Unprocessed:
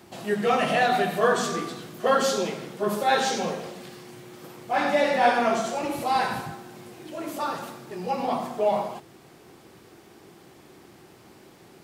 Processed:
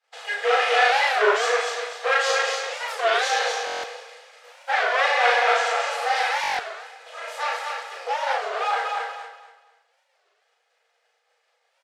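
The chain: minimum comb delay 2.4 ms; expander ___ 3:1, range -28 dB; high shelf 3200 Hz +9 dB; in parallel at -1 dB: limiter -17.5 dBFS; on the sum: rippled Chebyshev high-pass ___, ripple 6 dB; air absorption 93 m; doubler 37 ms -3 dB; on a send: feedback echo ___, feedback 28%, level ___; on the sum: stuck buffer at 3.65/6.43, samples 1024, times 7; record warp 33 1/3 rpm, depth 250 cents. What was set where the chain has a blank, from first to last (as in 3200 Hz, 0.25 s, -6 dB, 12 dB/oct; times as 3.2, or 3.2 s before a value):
-39 dBFS, 460 Hz, 0.24 s, -4 dB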